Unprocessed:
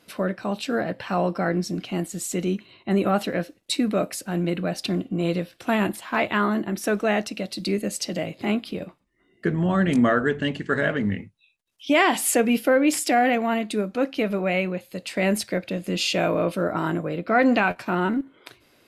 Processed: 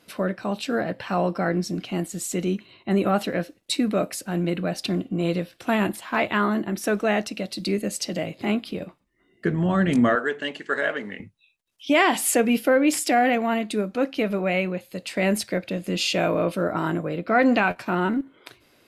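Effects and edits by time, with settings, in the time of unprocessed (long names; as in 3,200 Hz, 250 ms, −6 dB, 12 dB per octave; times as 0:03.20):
0:10.15–0:11.20: high-pass filter 440 Hz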